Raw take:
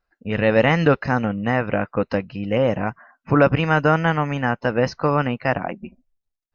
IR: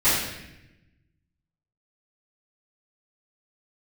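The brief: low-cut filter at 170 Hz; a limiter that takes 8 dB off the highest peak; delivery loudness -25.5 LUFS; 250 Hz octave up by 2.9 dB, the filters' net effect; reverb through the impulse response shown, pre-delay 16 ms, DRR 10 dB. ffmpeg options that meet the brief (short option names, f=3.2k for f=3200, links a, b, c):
-filter_complex "[0:a]highpass=170,equalizer=f=250:t=o:g=5,alimiter=limit=-10dB:level=0:latency=1,asplit=2[a][b];[1:a]atrim=start_sample=2205,adelay=16[c];[b][c]afir=irnorm=-1:irlink=0,volume=-27.5dB[d];[a][d]amix=inputs=2:normalize=0,volume=-3dB"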